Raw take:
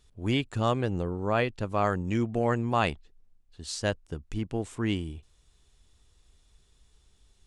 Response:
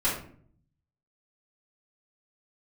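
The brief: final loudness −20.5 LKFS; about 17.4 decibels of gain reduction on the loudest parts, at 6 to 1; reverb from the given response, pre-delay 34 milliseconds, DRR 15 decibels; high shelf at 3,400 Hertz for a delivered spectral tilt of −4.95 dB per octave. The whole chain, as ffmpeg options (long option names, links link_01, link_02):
-filter_complex "[0:a]highshelf=frequency=3400:gain=5,acompressor=threshold=-40dB:ratio=6,asplit=2[link_01][link_02];[1:a]atrim=start_sample=2205,adelay=34[link_03];[link_02][link_03]afir=irnorm=-1:irlink=0,volume=-25.5dB[link_04];[link_01][link_04]amix=inputs=2:normalize=0,volume=23.5dB"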